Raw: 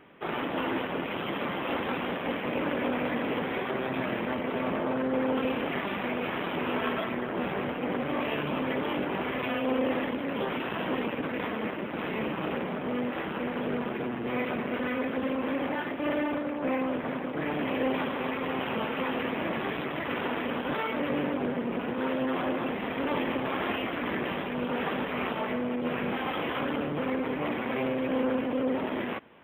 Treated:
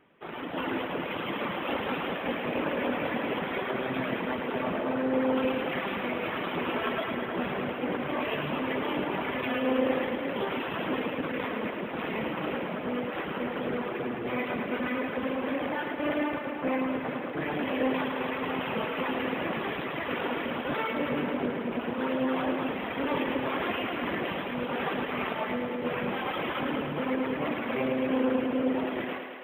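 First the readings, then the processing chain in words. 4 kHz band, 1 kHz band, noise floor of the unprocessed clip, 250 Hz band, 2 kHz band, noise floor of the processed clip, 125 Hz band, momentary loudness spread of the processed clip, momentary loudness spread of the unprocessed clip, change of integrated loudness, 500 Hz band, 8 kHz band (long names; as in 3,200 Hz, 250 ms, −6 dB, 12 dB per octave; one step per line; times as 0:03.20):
+0.5 dB, 0.0 dB, −34 dBFS, −0.5 dB, +0.5 dB, −35 dBFS, −1.0 dB, 4 LU, 3 LU, 0.0 dB, 0.0 dB, can't be measured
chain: reverb reduction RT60 1 s
automatic gain control gain up to 9 dB
feedback echo with a high-pass in the loop 108 ms, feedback 76%, high-pass 200 Hz, level −6.5 dB
level −8 dB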